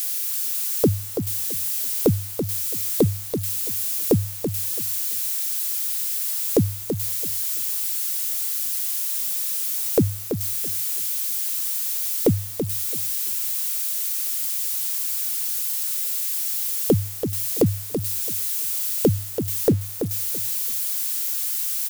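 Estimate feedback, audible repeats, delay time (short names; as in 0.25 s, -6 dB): 21%, 2, 0.333 s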